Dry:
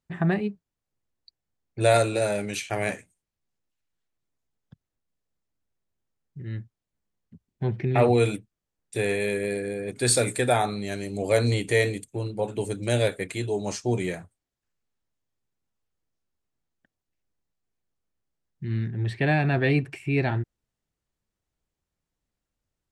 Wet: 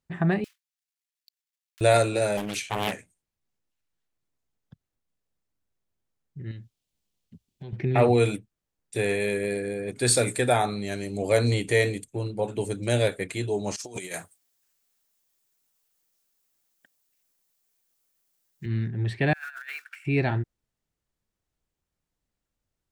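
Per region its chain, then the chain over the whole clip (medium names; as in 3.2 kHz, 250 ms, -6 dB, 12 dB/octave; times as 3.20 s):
0.44–1.81 s: block-companded coder 3-bit + Bessel high-pass 2.4 kHz, order 4 + compression 2.5:1, threshold -56 dBFS
2.37–2.93 s: treble shelf 9.7 kHz +3.5 dB + loudspeaker Doppler distortion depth 0.59 ms
6.51–7.73 s: resonant high shelf 2.3 kHz +7.5 dB, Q 1.5 + compression 5:1, threshold -38 dBFS
13.76–18.66 s: RIAA curve recording + compressor with a negative ratio -35 dBFS, ratio -0.5
19.33–20.05 s: block-companded coder 5-bit + ladder high-pass 1.4 kHz, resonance 85% + compressor with a negative ratio -38 dBFS, ratio -0.5
whole clip: none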